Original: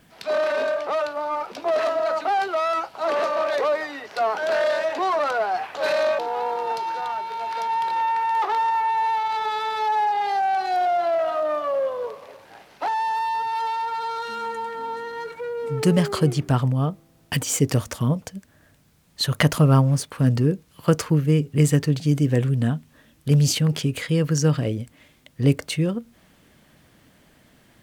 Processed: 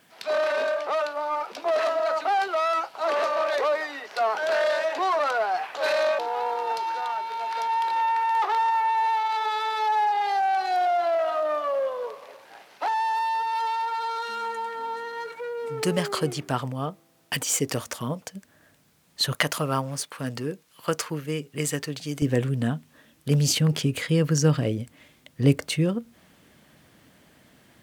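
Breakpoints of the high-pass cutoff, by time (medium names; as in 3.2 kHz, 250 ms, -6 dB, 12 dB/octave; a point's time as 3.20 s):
high-pass 6 dB/octave
490 Hz
from 18.35 s 230 Hz
from 19.35 s 810 Hz
from 22.22 s 200 Hz
from 23.49 s 88 Hz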